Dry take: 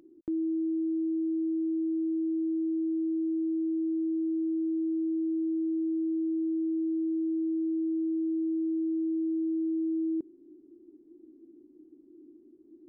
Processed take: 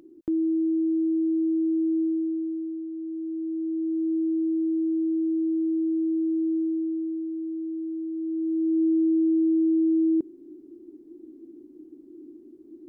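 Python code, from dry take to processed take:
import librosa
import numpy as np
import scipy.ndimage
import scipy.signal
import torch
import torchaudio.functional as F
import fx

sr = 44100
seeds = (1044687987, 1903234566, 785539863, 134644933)

y = fx.gain(x, sr, db=fx.line((2.01, 5.5), (2.9, -5.0), (4.14, 4.5), (6.56, 4.5), (7.3, -2.0), (8.12, -2.0), (8.83, 8.0)))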